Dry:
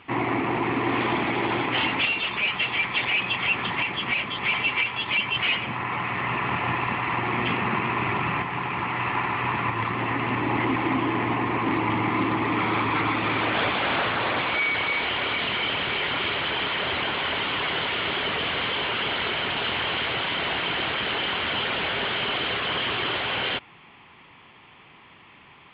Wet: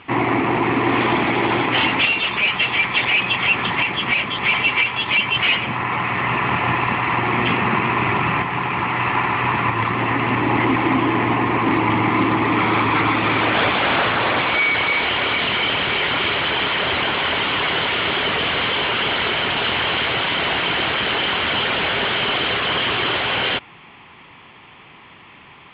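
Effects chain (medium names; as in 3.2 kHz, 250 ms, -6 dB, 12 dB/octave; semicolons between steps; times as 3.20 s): low-pass 5.9 kHz; trim +6.5 dB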